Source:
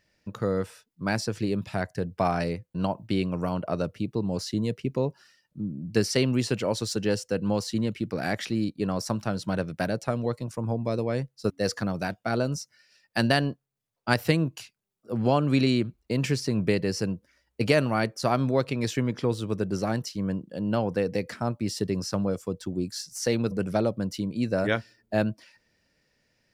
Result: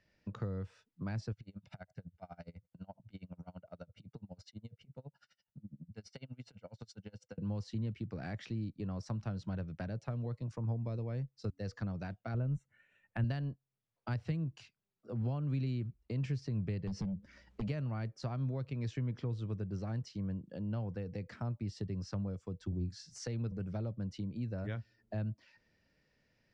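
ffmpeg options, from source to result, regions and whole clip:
ffmpeg -i in.wav -filter_complex "[0:a]asettb=1/sr,asplit=3[link_01][link_02][link_03];[link_01]atrim=end=1.324[link_04];[link_02]atrim=start=1.32:end=7.38,asetpts=PTS-STARTPTS,afade=type=in:duration=0.004:curve=qsin,afade=type=out:start_time=6.056:duration=0.004:curve=qsin,aecho=1:1:1.4:0.65,atrim=end_sample=267246,acompressor=threshold=-42dB:ratio=3:attack=3.2:release=140:knee=1:detection=peak,aeval=exprs='val(0)*pow(10,-30*(0.5-0.5*cos(2*PI*12*n/s))/20)':channel_layout=same[link_05];[link_03]atrim=start=7.376[link_06];[link_04][link_05]acrossfade=duration=0.004:curve1=hsin:curve2=qsin[link_07];[link_07][link_06]acrossfade=duration=0.004:curve1=qsin:curve2=hsin,asettb=1/sr,asplit=3[link_08][link_09][link_10];[link_08]atrim=end=12.344[link_11];[link_09]atrim=start=12.34:end=13.24,asetpts=PTS-STARTPTS,afade=type=in:duration=0.004:curve=qsin,afade=type=out:start_time=0.896:duration=0.004:curve=qsin,asuperstop=centerf=4900:order=4:qfactor=0.92,lowshelf=frequency=120:gain=9[link_12];[link_10]atrim=start=13.236[link_13];[link_11][link_12]acrossfade=duration=0.004:curve1=hsin:curve2=qsin[link_14];[link_14][link_13]acrossfade=duration=0.004:curve1=qsin:curve2=hsin,asettb=1/sr,asplit=3[link_15][link_16][link_17];[link_15]atrim=end=16.874[link_18];[link_16]atrim=start=16.87:end=17.68,asetpts=PTS-STARTPTS,afade=type=in:duration=0.004:curve=qsin,afade=type=out:start_time=0.806:duration=0.004:curve=qsin,equalizer=frequency=200:width=3.3:gain=11.5,acompressor=threshold=-40dB:ratio=2.5:attack=3.2:release=140:knee=1:detection=peak,aeval=exprs='0.075*sin(PI/2*2.82*val(0)/0.075)':channel_layout=same[link_19];[link_17]atrim=start=17.676[link_20];[link_18][link_19]acrossfade=duration=0.004:curve1=hsin:curve2=qsin[link_21];[link_21][link_20]acrossfade=duration=0.004:curve1=qsin:curve2=hsin,asettb=1/sr,asplit=3[link_22][link_23][link_24];[link_22]atrim=end=22.674[link_25];[link_23]atrim=start=22.67:end=23.18,asetpts=PTS-STARTPTS,afade=type=in:duration=0.004:curve=qsin,afade=type=out:start_time=0.506:duration=0.004:curve=qsin,equalizer=frequency=90:width_type=o:width=1.2:gain=6,asplit=2[link_26][link_27];[link_27]adelay=45,volume=-13dB[link_28];[link_26][link_28]amix=inputs=2:normalize=0,atrim=end_sample=22491[link_29];[link_24]atrim=start=23.176[link_30];[link_25][link_29]acrossfade=duration=0.004:curve1=hsin:curve2=qsin[link_31];[link_31][link_30]acrossfade=duration=0.004:curve1=qsin:curve2=hsin,bass=frequency=250:gain=3,treble=frequency=4000:gain=-6,acrossover=split=130[link_32][link_33];[link_33]acompressor=threshold=-38dB:ratio=6[link_34];[link_32][link_34]amix=inputs=2:normalize=0,lowpass=frequency=7000:width=0.5412,lowpass=frequency=7000:width=1.3066,volume=-4.5dB" out.wav

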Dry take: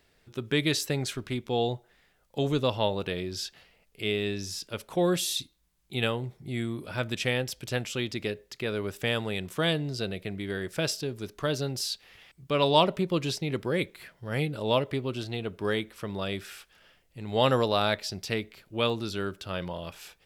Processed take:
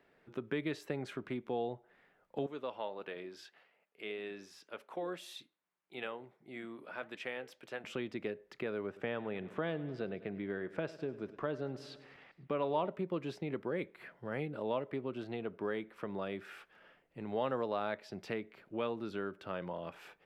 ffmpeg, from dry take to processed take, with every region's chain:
ffmpeg -i in.wav -filter_complex "[0:a]asettb=1/sr,asplit=3[link_01][link_02][link_03];[link_01]atrim=end=2.464[link_04];[link_02]atrim=start=2.46:end=7.84,asetpts=PTS-STARTPTS,afade=type=in:duration=0.004:curve=qsin,afade=type=out:start_time=5.376:duration=0.004:curve=qsin,highpass=frequency=660:poles=1,flanger=delay=1.6:depth=4.1:regen=-88:speed=1.7:shape=triangular[link_05];[link_03]atrim=start=7.836[link_06];[link_04][link_05]acrossfade=duration=0.004:curve1=hsin:curve2=qsin[link_07];[link_07][link_06]acrossfade=duration=0.004:curve1=qsin:curve2=hsin,asettb=1/sr,asplit=3[link_08][link_09][link_10];[link_08]atrim=end=8.864[link_11];[link_09]atrim=start=8.86:end=12.89,asetpts=PTS-STARTPTS,afade=type=in:duration=0.004:curve=qsin,afade=type=out:start_time=4.026:duration=0.004:curve=qsin,aemphasis=mode=reproduction:type=50fm,aecho=1:1:101|202|303|404|505:0.112|0.0662|0.0391|0.023|0.0136,atrim=end_sample=177723[link_12];[link_10]atrim=start=12.886[link_13];[link_11][link_12]acrossfade=duration=0.004:curve1=hsin:curve2=qsin[link_14];[link_14][link_13]acrossfade=duration=0.004:curve1=qsin:curve2=hsin,acrossover=split=160 2300:gain=0.126 1 0.1[link_15][link_16][link_17];[link_15][link_16][link_17]amix=inputs=3:normalize=0,acompressor=threshold=-41dB:ratio=2,volume=1dB" out.wav

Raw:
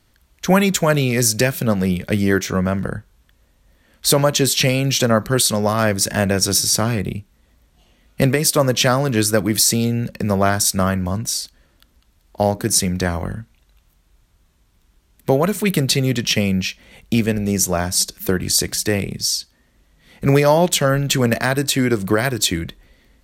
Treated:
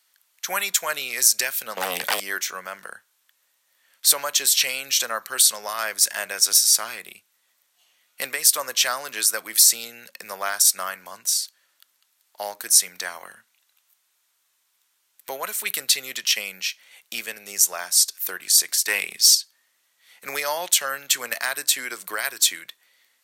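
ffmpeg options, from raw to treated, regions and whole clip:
ffmpeg -i in.wav -filter_complex "[0:a]asettb=1/sr,asplit=3[link_01][link_02][link_03];[link_01]atrim=end=1.774[link_04];[link_02]atrim=start=1.77:end=2.2,asetpts=PTS-STARTPTS,afade=type=in:duration=0.004:curve=qsin,afade=type=out:start_time=0.426:duration=0.004:curve=qsin,lowshelf=frequency=420:gain=6.5,acompressor=threshold=-15dB:ratio=3:attack=3.2:release=140:knee=1:detection=peak,aeval=exprs='0.447*sin(PI/2*3.98*val(0)/0.447)':channel_layout=same[link_05];[link_03]atrim=start=2.196[link_06];[link_04][link_05]acrossfade=duration=0.004:curve1=hsin:curve2=qsin[link_07];[link_07][link_06]acrossfade=duration=0.004:curve1=qsin:curve2=hsin,asettb=1/sr,asplit=3[link_08][link_09][link_10];[link_08]atrim=end=18.884[link_11];[link_09]atrim=start=18.88:end=19.35,asetpts=PTS-STARTPTS,afade=type=in:duration=0.004:curve=qsin,afade=type=out:start_time=0.466:duration=0.004:curve=qsin,equalizer=frequency=2500:width=1.4:gain=4,acontrast=49[link_12];[link_10]atrim=start=19.346[link_13];[link_11][link_12]acrossfade=duration=0.004:curve1=hsin:curve2=qsin[link_14];[link_14][link_13]acrossfade=duration=0.004:curve1=qsin:curve2=hsin,highpass=1100,highshelf=frequency=6400:gain=9,volume=-4dB" out.wav

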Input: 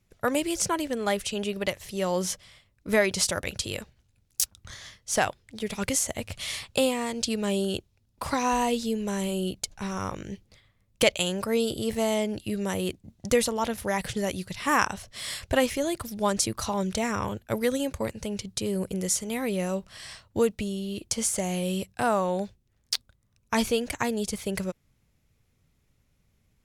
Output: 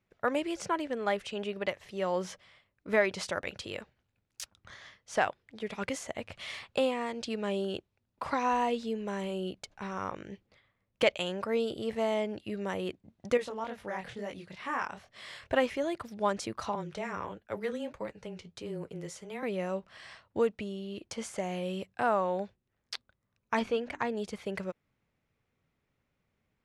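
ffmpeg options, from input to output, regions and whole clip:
ffmpeg -i in.wav -filter_complex "[0:a]asettb=1/sr,asplit=3[link_01][link_02][link_03];[link_01]atrim=end=13.374[link_04];[link_02]atrim=start=13.37:end=15.5,asetpts=PTS-STARTPTS,afade=type=in:duration=0.004:curve=qsin,afade=type=out:start_time=2.126:duration=0.004:curve=qsin,flanger=delay=19:depth=8:speed=2.2,acompressor=threshold=-33dB:ratio=1.5:attack=3.2:release=140:knee=1:detection=peak[link_05];[link_03]atrim=start=15.496[link_06];[link_04][link_05]acrossfade=duration=0.004:curve1=hsin:curve2=qsin[link_07];[link_07][link_06]acrossfade=duration=0.004:curve1=qsin:curve2=hsin,asettb=1/sr,asplit=3[link_08][link_09][link_10];[link_08]atrim=end=16.754[link_11];[link_09]atrim=start=16.75:end=19.43,asetpts=PTS-STARTPTS,afade=type=in:duration=0.004:curve=qsin,afade=type=out:start_time=2.676:duration=0.004:curve=qsin,afreqshift=-17,flanger=delay=5.7:depth=6.5:regen=-54:speed=1.5:shape=sinusoidal[link_12];[link_10]atrim=start=19.426[link_13];[link_11][link_12]acrossfade=duration=0.004:curve1=hsin:curve2=qsin[link_14];[link_14][link_13]acrossfade=duration=0.004:curve1=qsin:curve2=hsin,asettb=1/sr,asplit=3[link_15][link_16][link_17];[link_15]atrim=end=23.594[link_18];[link_16]atrim=start=23.59:end=24.15,asetpts=PTS-STARTPTS,afade=type=in:duration=0.004:curve=qsin,afade=type=out:start_time=0.556:duration=0.004:curve=qsin,highshelf=frequency=6700:gain=-11,bandreject=frequency=50:width_type=h:width=6,bandreject=frequency=100:width_type=h:width=6,bandreject=frequency=150:width_type=h:width=6,bandreject=frequency=200:width_type=h:width=6,bandreject=frequency=250:width_type=h:width=6,bandreject=frequency=300:width_type=h:width=6,bandreject=frequency=350:width_type=h:width=6,bandreject=frequency=400:width_type=h:width=6,asoftclip=type=hard:threshold=-17dB[link_19];[link_17]atrim=start=24.146[link_20];[link_18][link_19]acrossfade=duration=0.004:curve1=hsin:curve2=qsin[link_21];[link_21][link_20]acrossfade=duration=0.004:curve1=qsin:curve2=hsin,lowpass=2000,aemphasis=mode=production:type=bsi,volume=-2dB" out.wav

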